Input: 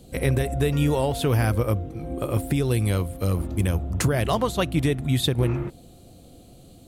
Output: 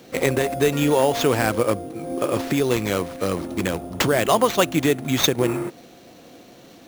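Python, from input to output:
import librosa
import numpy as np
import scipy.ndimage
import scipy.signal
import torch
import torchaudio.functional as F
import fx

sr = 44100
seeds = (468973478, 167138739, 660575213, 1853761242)

y = scipy.signal.sosfilt(scipy.signal.butter(2, 260.0, 'highpass', fs=sr, output='sos'), x)
y = fx.sample_hold(y, sr, seeds[0], rate_hz=10000.0, jitter_pct=0)
y = y * 10.0 ** (6.5 / 20.0)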